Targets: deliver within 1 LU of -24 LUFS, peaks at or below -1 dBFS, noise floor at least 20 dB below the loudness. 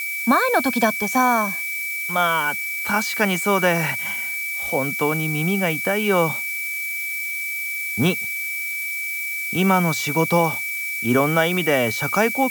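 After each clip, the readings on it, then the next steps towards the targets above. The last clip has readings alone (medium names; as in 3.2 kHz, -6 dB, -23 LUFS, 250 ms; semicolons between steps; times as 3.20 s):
steady tone 2.3 kHz; tone level -25 dBFS; noise floor -27 dBFS; noise floor target -41 dBFS; loudness -20.5 LUFS; peak level -4.5 dBFS; loudness target -24.0 LUFS
-> band-stop 2.3 kHz, Q 30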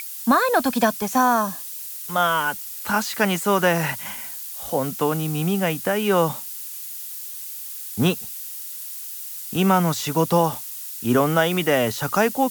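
steady tone not found; noise floor -34 dBFS; noise floor target -43 dBFS
-> noise print and reduce 9 dB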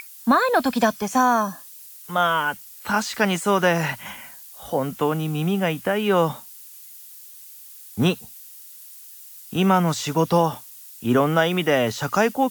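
noise floor -43 dBFS; loudness -21.5 LUFS; peak level -5.5 dBFS; loudness target -24.0 LUFS
-> trim -2.5 dB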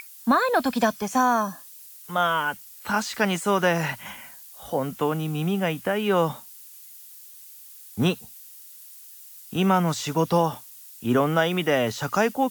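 loudness -24.0 LUFS; peak level -8.0 dBFS; noise floor -46 dBFS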